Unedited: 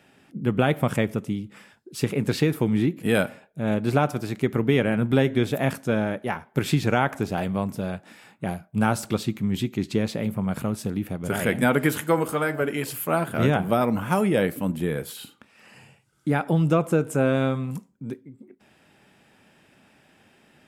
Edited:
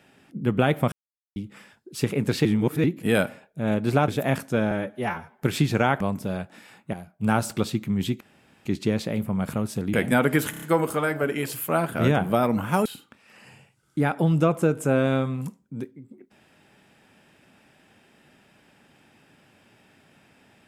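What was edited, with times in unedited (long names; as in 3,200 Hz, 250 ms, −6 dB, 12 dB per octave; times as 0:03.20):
0:00.92–0:01.36: silence
0:02.45–0:02.84: reverse
0:04.08–0:05.43: remove
0:06.06–0:06.51: time-stretch 1.5×
0:07.13–0:07.54: remove
0:08.47–0:08.86: fade in, from −12 dB
0:09.74: splice in room tone 0.45 s
0:11.02–0:11.44: remove
0:12.01: stutter 0.03 s, 5 plays
0:14.24–0:15.15: remove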